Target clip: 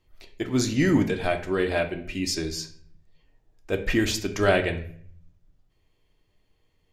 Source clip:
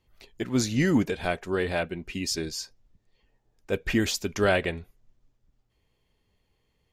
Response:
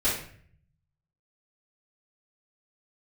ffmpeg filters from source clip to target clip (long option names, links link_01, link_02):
-filter_complex "[0:a]asplit=2[link_01][link_02];[1:a]atrim=start_sample=2205,lowpass=7700[link_03];[link_02][link_03]afir=irnorm=-1:irlink=0,volume=-16dB[link_04];[link_01][link_04]amix=inputs=2:normalize=0"